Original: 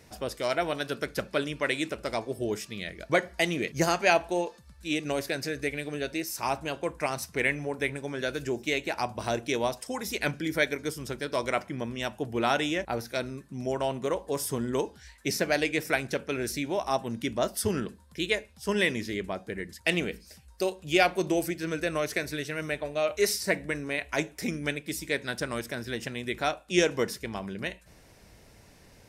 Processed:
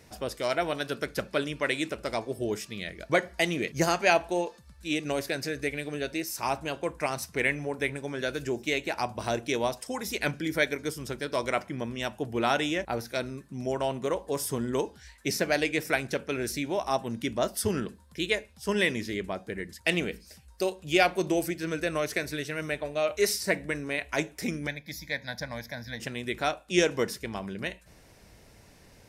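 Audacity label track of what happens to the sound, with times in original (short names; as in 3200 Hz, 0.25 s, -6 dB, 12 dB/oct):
24.670000	26.000000	fixed phaser centre 1900 Hz, stages 8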